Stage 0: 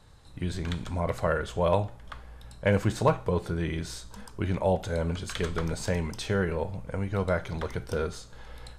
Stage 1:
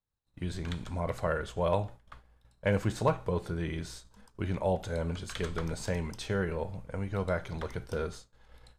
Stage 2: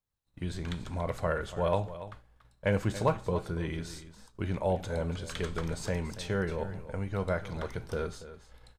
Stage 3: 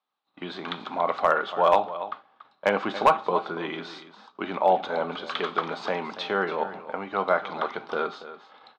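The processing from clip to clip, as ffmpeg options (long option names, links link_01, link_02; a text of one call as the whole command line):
ffmpeg -i in.wav -af "agate=range=-33dB:threshold=-35dB:ratio=3:detection=peak,volume=-4dB" out.wav
ffmpeg -i in.wav -af "aecho=1:1:284:0.2" out.wav
ffmpeg -i in.wav -af "highpass=frequency=260:width=0.5412,highpass=frequency=260:width=1.3066,equalizer=frequency=320:width_type=q:width=4:gain=-3,equalizer=frequency=490:width_type=q:width=4:gain=-5,equalizer=frequency=780:width_type=q:width=4:gain=8,equalizer=frequency=1200:width_type=q:width=4:gain=10,equalizer=frequency=1800:width_type=q:width=4:gain=-3,equalizer=frequency=3600:width_type=q:width=4:gain=4,lowpass=frequency=4000:width=0.5412,lowpass=frequency=4000:width=1.3066,volume=17.5dB,asoftclip=hard,volume=-17.5dB,volume=8dB" out.wav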